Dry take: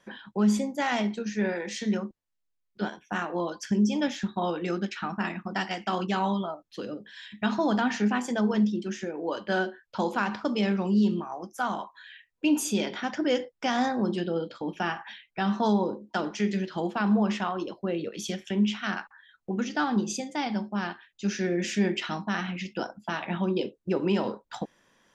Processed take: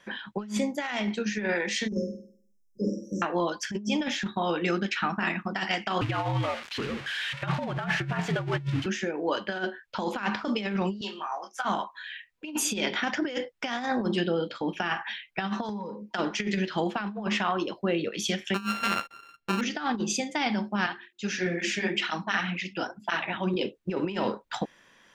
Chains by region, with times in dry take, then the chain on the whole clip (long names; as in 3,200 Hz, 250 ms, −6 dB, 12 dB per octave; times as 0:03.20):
0:01.88–0:03.22: linear-phase brick-wall band-stop 590–5,000 Hz + double-tracking delay 41 ms −3 dB + flutter between parallel walls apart 8.6 metres, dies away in 0.54 s
0:06.01–0:08.86: spike at every zero crossing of −20.5 dBFS + low-pass filter 2,400 Hz + frequency shifter −72 Hz
0:11.01–0:11.65: band-pass filter 770–7,300 Hz + double-tracking delay 25 ms −3 dB
0:15.69–0:16.11: EQ curve with evenly spaced ripples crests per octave 0.83, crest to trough 9 dB + downward compressor 5 to 1, threshold −35 dBFS + notch comb filter 370 Hz
0:18.54–0:19.61: samples sorted by size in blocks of 32 samples + low-pass filter 3,900 Hz 6 dB per octave
0:20.86–0:23.54: mains-hum notches 50/100/150/200/250/300/350/400 Hz + through-zero flanger with one copy inverted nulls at 2 Hz, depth 6 ms
whole clip: parametric band 2,300 Hz +7 dB 1.8 octaves; compressor whose output falls as the input rises −27 dBFS, ratio −0.5